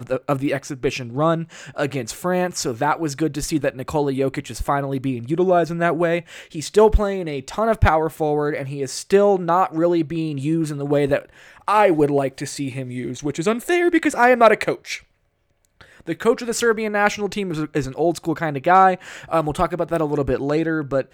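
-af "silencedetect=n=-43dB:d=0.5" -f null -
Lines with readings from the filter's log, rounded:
silence_start: 15.03
silence_end: 15.65 | silence_duration: 0.62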